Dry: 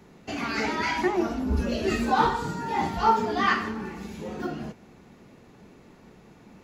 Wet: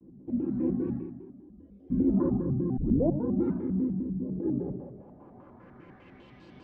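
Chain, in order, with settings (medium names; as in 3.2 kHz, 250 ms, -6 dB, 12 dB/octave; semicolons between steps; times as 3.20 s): 0.97–1.91 s: pre-emphasis filter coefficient 0.97; FDN reverb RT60 0.88 s, low-frequency decay 1.25×, high-frequency decay 0.7×, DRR -3.5 dB; 2.77 s: tape start 0.49 s; low-pass sweep 250 Hz -> 3.7 kHz, 4.35–6.44 s; vibrato with a chosen wave square 5 Hz, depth 250 cents; trim -7.5 dB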